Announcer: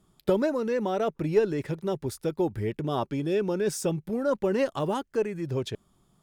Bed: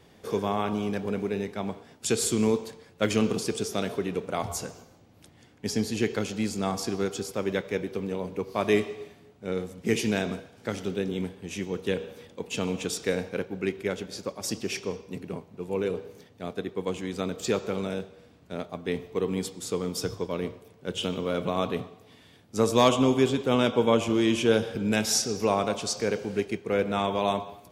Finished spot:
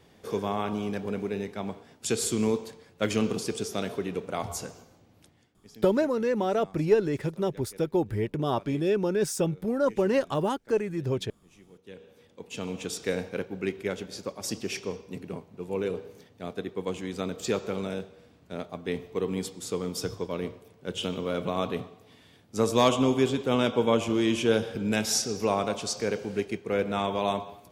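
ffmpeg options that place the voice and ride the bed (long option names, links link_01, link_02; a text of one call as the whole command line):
ffmpeg -i stem1.wav -i stem2.wav -filter_complex "[0:a]adelay=5550,volume=1dB[link_01];[1:a]volume=19dB,afade=type=out:start_time=5.12:duration=0.47:silence=0.0944061,afade=type=in:start_time=11.83:duration=1.34:silence=0.0891251[link_02];[link_01][link_02]amix=inputs=2:normalize=0" out.wav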